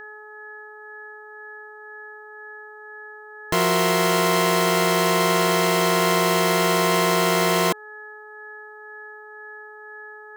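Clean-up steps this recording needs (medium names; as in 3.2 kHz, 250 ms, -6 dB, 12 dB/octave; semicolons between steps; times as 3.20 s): de-hum 425.5 Hz, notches 4; band-stop 1.7 kHz, Q 30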